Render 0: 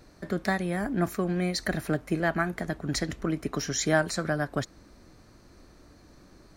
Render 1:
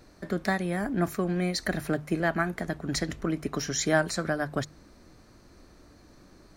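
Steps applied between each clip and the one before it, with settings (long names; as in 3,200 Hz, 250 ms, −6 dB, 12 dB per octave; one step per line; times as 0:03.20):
mains-hum notches 50/100/150 Hz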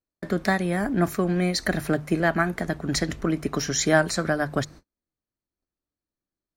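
noise gate −46 dBFS, range −43 dB
level +4.5 dB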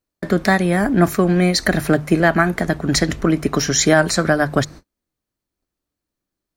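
boost into a limiter +9 dB
level −1 dB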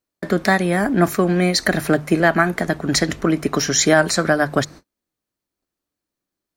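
low-shelf EQ 110 Hz −10 dB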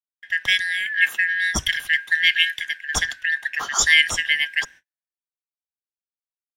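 band-splitting scrambler in four parts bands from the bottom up 4123
multiband upward and downward expander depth 100%
level −4 dB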